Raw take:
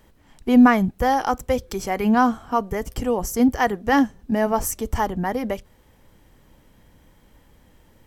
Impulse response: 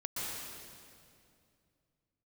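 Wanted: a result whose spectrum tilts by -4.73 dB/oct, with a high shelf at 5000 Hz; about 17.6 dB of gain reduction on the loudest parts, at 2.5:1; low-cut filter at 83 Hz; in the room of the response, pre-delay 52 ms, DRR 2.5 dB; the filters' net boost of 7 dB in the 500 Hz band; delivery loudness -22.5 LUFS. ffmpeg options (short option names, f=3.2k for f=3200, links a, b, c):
-filter_complex "[0:a]highpass=83,equalizer=f=500:t=o:g=8,highshelf=f=5k:g=8.5,acompressor=threshold=-35dB:ratio=2.5,asplit=2[a][b];[1:a]atrim=start_sample=2205,adelay=52[c];[b][c]afir=irnorm=-1:irlink=0,volume=-6dB[d];[a][d]amix=inputs=2:normalize=0,volume=8dB"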